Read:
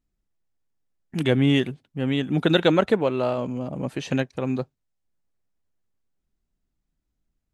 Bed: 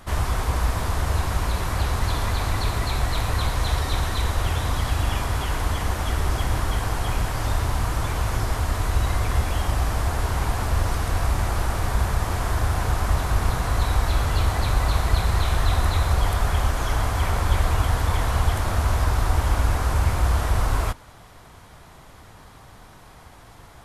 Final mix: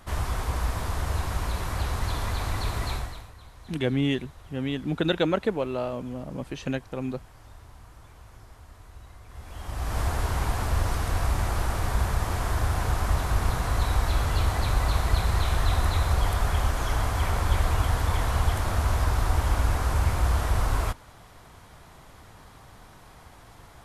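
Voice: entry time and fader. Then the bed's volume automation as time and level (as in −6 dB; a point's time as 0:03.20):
2.55 s, −5.5 dB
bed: 0:02.93 −5 dB
0:03.34 −25 dB
0:09.25 −25 dB
0:09.99 −3 dB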